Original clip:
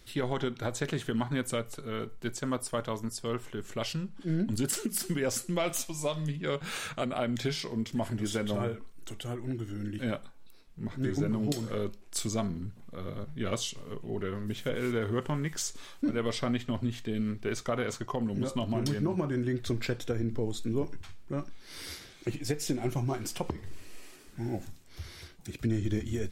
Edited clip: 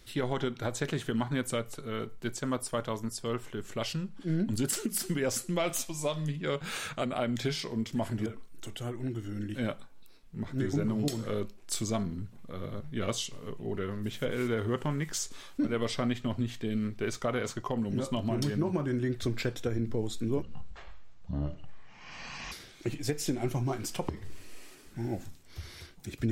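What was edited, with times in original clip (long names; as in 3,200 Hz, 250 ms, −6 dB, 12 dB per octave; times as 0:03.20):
0:08.26–0:08.70: remove
0:20.86–0:21.93: play speed 51%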